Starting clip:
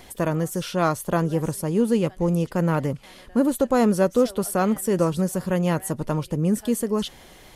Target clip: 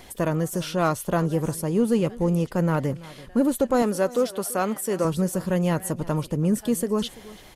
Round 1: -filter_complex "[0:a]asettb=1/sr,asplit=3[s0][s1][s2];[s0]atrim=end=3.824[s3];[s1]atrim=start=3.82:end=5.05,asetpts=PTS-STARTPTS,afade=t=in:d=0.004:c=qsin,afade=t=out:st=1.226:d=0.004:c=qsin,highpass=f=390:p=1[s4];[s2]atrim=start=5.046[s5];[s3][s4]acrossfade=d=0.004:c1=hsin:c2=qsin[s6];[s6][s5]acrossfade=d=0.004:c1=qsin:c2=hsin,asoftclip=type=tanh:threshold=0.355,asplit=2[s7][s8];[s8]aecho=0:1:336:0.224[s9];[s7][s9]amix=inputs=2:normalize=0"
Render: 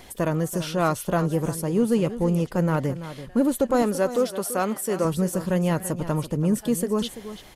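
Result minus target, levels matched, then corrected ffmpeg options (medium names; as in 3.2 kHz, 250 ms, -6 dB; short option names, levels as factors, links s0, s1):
echo-to-direct +7 dB
-filter_complex "[0:a]asettb=1/sr,asplit=3[s0][s1][s2];[s0]atrim=end=3.824[s3];[s1]atrim=start=3.82:end=5.05,asetpts=PTS-STARTPTS,afade=t=in:d=0.004:c=qsin,afade=t=out:st=1.226:d=0.004:c=qsin,highpass=f=390:p=1[s4];[s2]atrim=start=5.046[s5];[s3][s4]acrossfade=d=0.004:c1=hsin:c2=qsin[s6];[s6][s5]acrossfade=d=0.004:c1=qsin:c2=hsin,asoftclip=type=tanh:threshold=0.355,asplit=2[s7][s8];[s8]aecho=0:1:336:0.1[s9];[s7][s9]amix=inputs=2:normalize=0"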